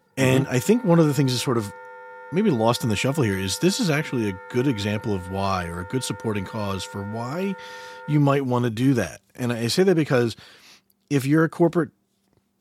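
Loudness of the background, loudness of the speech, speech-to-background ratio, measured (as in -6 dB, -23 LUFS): -40.5 LUFS, -23.0 LUFS, 17.5 dB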